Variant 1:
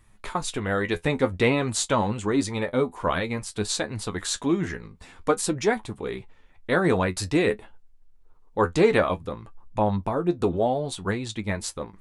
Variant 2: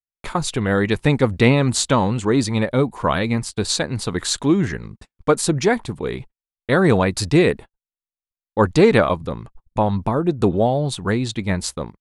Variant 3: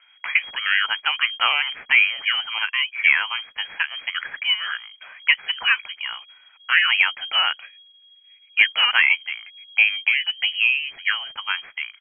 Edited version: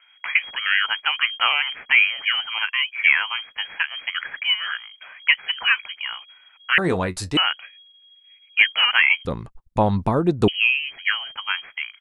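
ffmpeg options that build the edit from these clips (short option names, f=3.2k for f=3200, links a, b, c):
-filter_complex "[2:a]asplit=3[a][b][c];[a]atrim=end=6.782[d];[0:a]atrim=start=6.778:end=7.372[e];[b]atrim=start=7.368:end=9.252[f];[1:a]atrim=start=9.248:end=10.482[g];[c]atrim=start=10.478[h];[d][e]acrossfade=d=0.004:c1=hsin:c2=hsin[i];[i][f]acrossfade=d=0.004:c1=hsin:c2=hsin[j];[j][g]acrossfade=d=0.004:c1=hsin:c2=hsin[k];[k][h]acrossfade=d=0.004:c1=hsin:c2=hsin"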